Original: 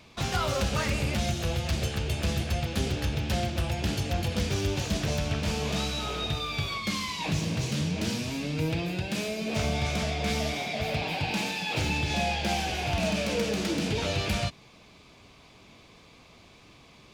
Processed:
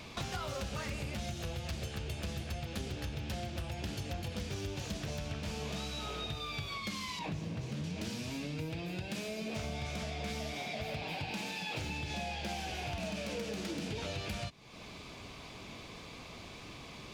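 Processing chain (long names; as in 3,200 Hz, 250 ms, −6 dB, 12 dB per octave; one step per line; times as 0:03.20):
0:07.19–0:07.84: high-shelf EQ 2,800 Hz −10.5 dB
downward compressor 4 to 1, threshold −45 dBFS, peak gain reduction 18 dB
level +5.5 dB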